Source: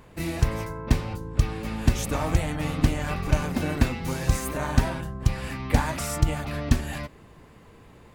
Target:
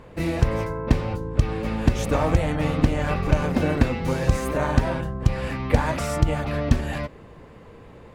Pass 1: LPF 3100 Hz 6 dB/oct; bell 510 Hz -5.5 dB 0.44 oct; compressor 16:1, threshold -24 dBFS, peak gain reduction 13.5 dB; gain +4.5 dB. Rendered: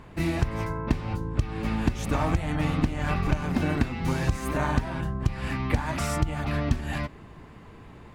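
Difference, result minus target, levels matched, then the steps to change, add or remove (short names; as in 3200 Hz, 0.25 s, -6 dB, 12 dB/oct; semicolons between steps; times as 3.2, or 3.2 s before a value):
compressor: peak gain reduction +7.5 dB; 500 Hz band -3.5 dB
change: bell 510 Hz +6 dB 0.44 oct; change: compressor 16:1, threshold -16 dBFS, peak gain reduction 6 dB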